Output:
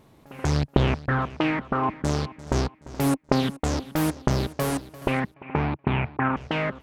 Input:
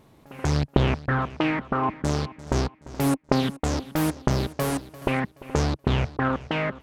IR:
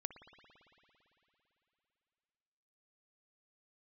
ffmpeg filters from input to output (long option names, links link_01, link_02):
-filter_complex "[0:a]asettb=1/sr,asplit=3[link_01][link_02][link_03];[link_01]atrim=end=5.344[link_04];[link_02]atrim=start=5.34:end=6.37,asetpts=PTS-STARTPTS,afade=type=in:duration=0.004:curve=qsin,afade=type=out:start_time=1.026:duration=0.004:curve=qsin,highpass=100,equalizer=frequency=170:width_type=q:width=4:gain=3,equalizer=frequency=510:width_type=q:width=4:gain=-8,equalizer=frequency=880:width_type=q:width=4:gain=5,equalizer=frequency=2400:width_type=q:width=4:gain=8,lowpass=frequency=2600:width=0.5412,lowpass=frequency=2600:width=1.3066[link_05];[link_03]atrim=start=6.366[link_06];[link_04][link_05]acrossfade=duration=0.004:curve1=hsin:curve2=qsin[link_07];[link_07][link_06]acrossfade=duration=0.004:curve1=qsin:curve2=hsin"